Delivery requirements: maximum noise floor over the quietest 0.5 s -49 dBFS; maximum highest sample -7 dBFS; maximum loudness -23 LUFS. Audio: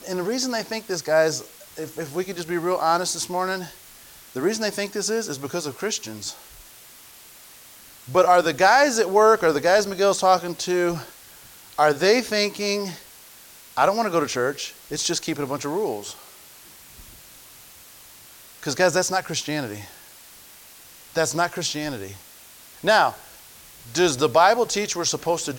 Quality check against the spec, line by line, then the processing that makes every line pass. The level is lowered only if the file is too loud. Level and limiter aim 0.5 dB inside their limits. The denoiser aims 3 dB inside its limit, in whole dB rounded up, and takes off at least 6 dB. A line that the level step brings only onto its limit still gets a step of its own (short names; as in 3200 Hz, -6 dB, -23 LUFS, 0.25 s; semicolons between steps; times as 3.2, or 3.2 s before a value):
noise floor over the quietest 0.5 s -47 dBFS: fail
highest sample -5.5 dBFS: fail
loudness -22.0 LUFS: fail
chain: denoiser 6 dB, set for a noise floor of -47 dBFS; gain -1.5 dB; limiter -7.5 dBFS